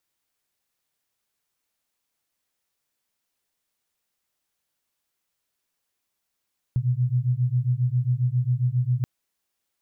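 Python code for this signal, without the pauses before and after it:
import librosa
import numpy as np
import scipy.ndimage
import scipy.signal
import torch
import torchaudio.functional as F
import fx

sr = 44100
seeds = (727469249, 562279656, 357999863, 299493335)

y = fx.two_tone_beats(sr, length_s=2.28, hz=121.0, beat_hz=7.4, level_db=-23.0)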